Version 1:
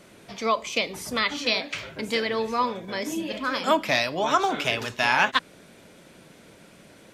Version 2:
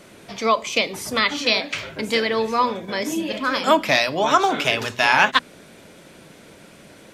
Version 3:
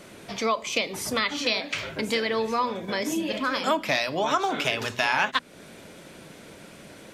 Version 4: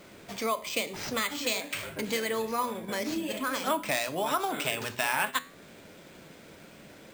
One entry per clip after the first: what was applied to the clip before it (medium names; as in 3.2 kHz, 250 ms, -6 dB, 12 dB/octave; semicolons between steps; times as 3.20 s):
hum notches 60/120/180/240 Hz; trim +5 dB
compression 2:1, threshold -26 dBFS, peak gain reduction 9 dB
flange 0.51 Hz, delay 9.6 ms, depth 4.5 ms, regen +85%; careless resampling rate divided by 4×, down none, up hold